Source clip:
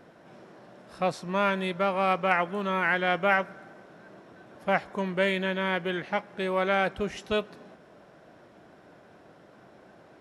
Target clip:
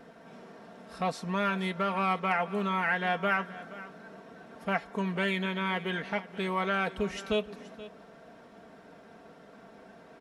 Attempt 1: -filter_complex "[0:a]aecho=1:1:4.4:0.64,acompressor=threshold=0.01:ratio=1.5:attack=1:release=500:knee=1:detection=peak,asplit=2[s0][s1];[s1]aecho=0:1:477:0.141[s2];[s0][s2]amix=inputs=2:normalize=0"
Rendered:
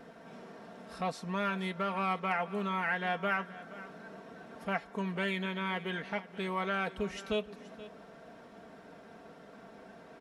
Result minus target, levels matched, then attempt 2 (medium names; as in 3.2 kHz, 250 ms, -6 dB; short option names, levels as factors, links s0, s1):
compression: peak gain reduction +4 dB
-filter_complex "[0:a]aecho=1:1:4.4:0.64,acompressor=threshold=0.0376:ratio=1.5:attack=1:release=500:knee=1:detection=peak,asplit=2[s0][s1];[s1]aecho=0:1:477:0.141[s2];[s0][s2]amix=inputs=2:normalize=0"